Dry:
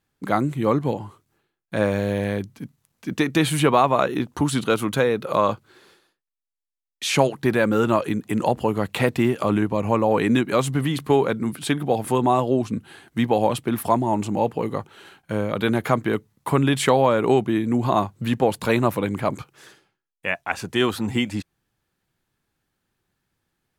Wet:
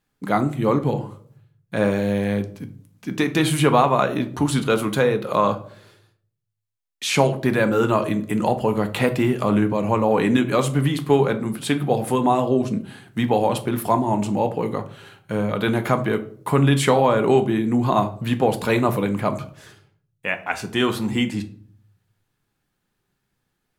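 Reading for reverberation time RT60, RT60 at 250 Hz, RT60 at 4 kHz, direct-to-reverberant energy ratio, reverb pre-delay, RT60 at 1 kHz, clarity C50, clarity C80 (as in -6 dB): 0.55 s, 0.75 s, 0.35 s, 7.0 dB, 4 ms, 0.45 s, 14.5 dB, 19.0 dB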